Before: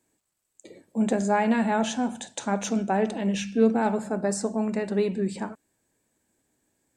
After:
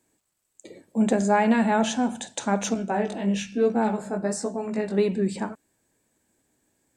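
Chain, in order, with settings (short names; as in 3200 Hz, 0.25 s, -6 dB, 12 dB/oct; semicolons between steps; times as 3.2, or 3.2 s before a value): 2.74–4.98 chorus 1.1 Hz, delay 16 ms, depth 5 ms; gain +2.5 dB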